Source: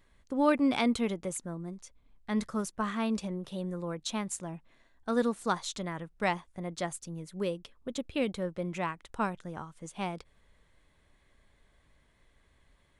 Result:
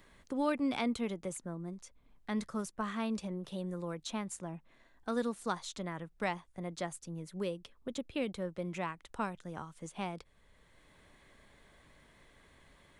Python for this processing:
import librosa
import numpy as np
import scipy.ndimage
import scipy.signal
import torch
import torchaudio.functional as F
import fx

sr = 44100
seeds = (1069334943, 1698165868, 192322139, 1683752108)

y = fx.band_squash(x, sr, depth_pct=40)
y = y * librosa.db_to_amplitude(-4.5)